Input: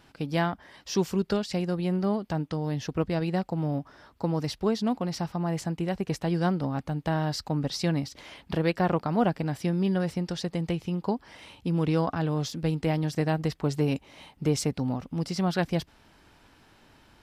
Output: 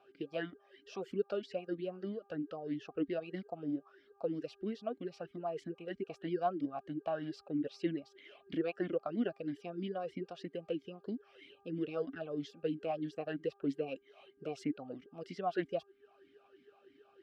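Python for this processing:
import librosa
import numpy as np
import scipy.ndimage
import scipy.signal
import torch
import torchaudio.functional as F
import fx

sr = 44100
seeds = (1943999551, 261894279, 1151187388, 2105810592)

y = fx.dereverb_blind(x, sr, rt60_s=0.51)
y = fx.dmg_buzz(y, sr, base_hz=400.0, harmonics=4, level_db=-57.0, tilt_db=-8, odd_only=False)
y = fx.vowel_sweep(y, sr, vowels='a-i', hz=3.1)
y = y * 10.0 ** (2.0 / 20.0)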